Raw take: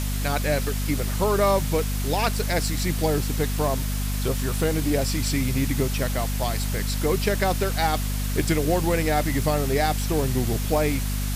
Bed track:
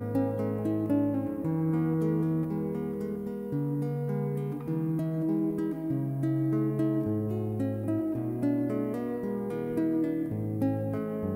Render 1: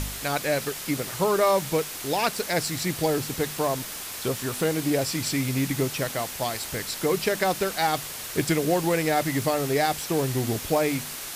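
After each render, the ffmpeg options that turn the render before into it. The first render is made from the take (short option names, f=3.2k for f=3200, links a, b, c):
-af "bandreject=f=50:t=h:w=4,bandreject=f=100:t=h:w=4,bandreject=f=150:t=h:w=4,bandreject=f=200:t=h:w=4,bandreject=f=250:t=h:w=4"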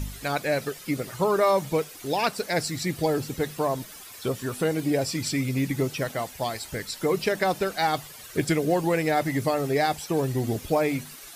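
-af "afftdn=nr=12:nf=-36"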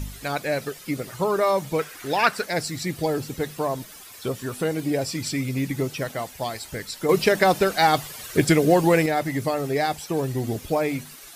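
-filter_complex "[0:a]asettb=1/sr,asplit=3[a][b][c];[a]atrim=end=1.794[d];[b]atrim=start=1.79:end=2.45,asetpts=PTS-STARTPTS,afade=t=in:d=0.004:c=qsin,afade=t=out:st=0.656:d=0.004:c=qsin,equalizer=f=1.6k:t=o:w=1.2:g=11.5[e];[c]atrim=start=2.446[f];[d][e]acrossfade=d=0.004:c1=hsin:c2=qsin[g];[g][f]acrossfade=d=0.004:c1=qsin:c2=hsin,asplit=3[h][i][j];[h]atrim=end=7.092[k];[i]atrim=start=7.088:end=9.062,asetpts=PTS-STARTPTS,volume=6dB[l];[j]atrim=start=9.058[m];[k][l]acrossfade=d=0.004:c1=hsin:c2=hsin[n];[n][m]acrossfade=d=0.004:c1=hsin:c2=hsin"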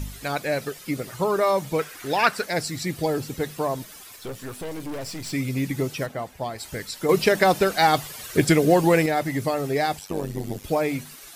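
-filter_complex "[0:a]asettb=1/sr,asplit=3[a][b][c];[a]atrim=end=4.164[d];[b]atrim=start=4.16:end=5.33,asetpts=PTS-STARTPTS,afade=t=in:d=0.004:c=qsin,afade=t=out:st=1.166:d=0.004:c=qsin,aeval=exprs='(tanh(31.6*val(0)+0.55)-tanh(0.55))/31.6':c=same[e];[c]atrim=start=5.326[f];[d][e]acrossfade=d=0.004:c1=hsin:c2=qsin[g];[g][f]acrossfade=d=0.004:c1=qsin:c2=hsin,asplit=3[h][i][j];[h]afade=t=out:st=6.05:d=0.02[k];[i]highshelf=f=2.4k:g=-11.5,afade=t=in:st=6.05:d=0.02,afade=t=out:st=6.58:d=0.02[l];[j]afade=t=in:st=6.58:d=0.02[m];[k][l][m]amix=inputs=3:normalize=0,asettb=1/sr,asplit=3[n][o][p];[n]atrim=end=9.994[q];[o]atrim=start=9.99:end=10.64,asetpts=PTS-STARTPTS,afade=t=in:d=0.004:c=qsin,afade=t=out:st=0.646:d=0.004:c=qsin,tremolo=f=97:d=0.857[r];[p]atrim=start=10.636[s];[q][r]acrossfade=d=0.004:c1=hsin:c2=qsin[t];[t][s]acrossfade=d=0.004:c1=qsin:c2=hsin"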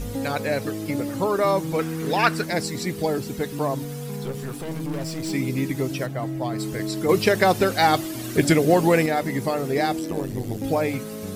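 -filter_complex "[1:a]volume=-1.5dB[a];[0:a][a]amix=inputs=2:normalize=0"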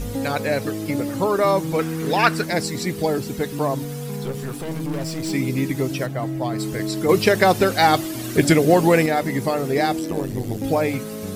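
-af "volume=2.5dB"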